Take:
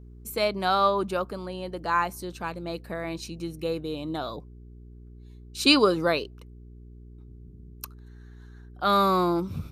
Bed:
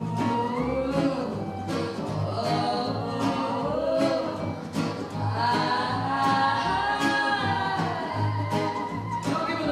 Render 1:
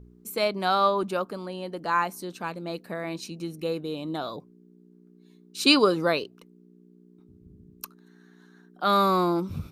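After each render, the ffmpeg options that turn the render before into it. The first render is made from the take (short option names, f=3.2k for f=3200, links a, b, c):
-af "bandreject=f=60:t=h:w=4,bandreject=f=120:t=h:w=4"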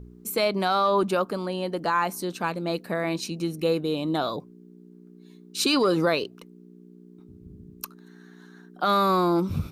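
-af "acontrast=45,alimiter=limit=-13.5dB:level=0:latency=1:release=90"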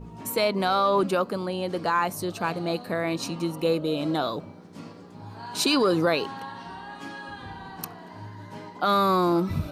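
-filter_complex "[1:a]volume=-15dB[a];[0:a][a]amix=inputs=2:normalize=0"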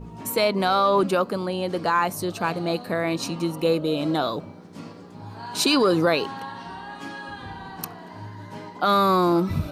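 -af "volume=2.5dB"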